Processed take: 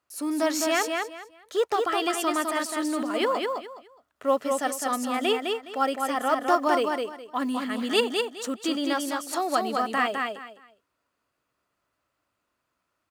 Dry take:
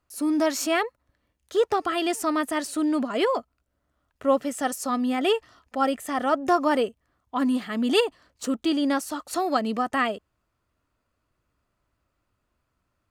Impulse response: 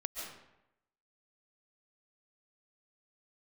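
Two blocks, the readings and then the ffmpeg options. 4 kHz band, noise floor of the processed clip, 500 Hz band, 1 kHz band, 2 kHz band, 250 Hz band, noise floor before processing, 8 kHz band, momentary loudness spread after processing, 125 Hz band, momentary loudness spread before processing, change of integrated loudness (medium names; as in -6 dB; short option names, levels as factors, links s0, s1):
+1.5 dB, -79 dBFS, -1.0 dB, +0.5 dB, +1.5 dB, -4.0 dB, -77 dBFS, +1.5 dB, 8 LU, no reading, 7 LU, -1.0 dB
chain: -filter_complex "[0:a]highpass=f=430:p=1,acrusher=bits=9:mode=log:mix=0:aa=0.000001,asplit=2[s0][s1];[s1]aecho=0:1:208|416|624:0.631|0.145|0.0334[s2];[s0][s2]amix=inputs=2:normalize=0"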